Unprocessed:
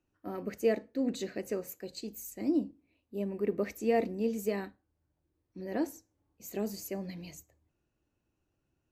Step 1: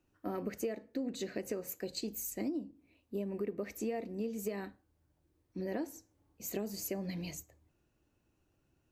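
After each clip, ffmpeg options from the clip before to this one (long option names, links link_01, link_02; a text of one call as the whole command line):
ffmpeg -i in.wav -af "acompressor=threshold=-38dB:ratio=12,volume=4.5dB" out.wav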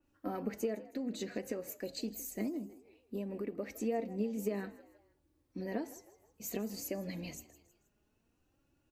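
ffmpeg -i in.wav -filter_complex "[0:a]flanger=delay=3.5:depth=1.4:regen=43:speed=0.57:shape=sinusoidal,asplit=4[link_01][link_02][link_03][link_04];[link_02]adelay=159,afreqshift=57,volume=-18.5dB[link_05];[link_03]adelay=318,afreqshift=114,volume=-26dB[link_06];[link_04]adelay=477,afreqshift=171,volume=-33.6dB[link_07];[link_01][link_05][link_06][link_07]amix=inputs=4:normalize=0,adynamicequalizer=threshold=0.00112:dfrequency=3300:dqfactor=0.7:tfrequency=3300:tqfactor=0.7:attack=5:release=100:ratio=0.375:range=2:mode=cutabove:tftype=highshelf,volume=4dB" out.wav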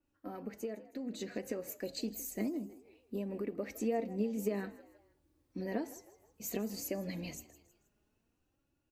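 ffmpeg -i in.wav -af "dynaudnorm=framelen=260:gausssize=9:maxgain=7dB,volume=-6dB" out.wav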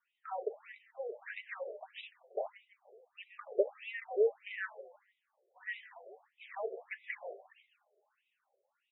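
ffmpeg -i in.wav -af "afftfilt=real='re*between(b*sr/1024,510*pow(2800/510,0.5+0.5*sin(2*PI*1.6*pts/sr))/1.41,510*pow(2800/510,0.5+0.5*sin(2*PI*1.6*pts/sr))*1.41)':imag='im*between(b*sr/1024,510*pow(2800/510,0.5+0.5*sin(2*PI*1.6*pts/sr))/1.41,510*pow(2800/510,0.5+0.5*sin(2*PI*1.6*pts/sr))*1.41)':win_size=1024:overlap=0.75,volume=11dB" out.wav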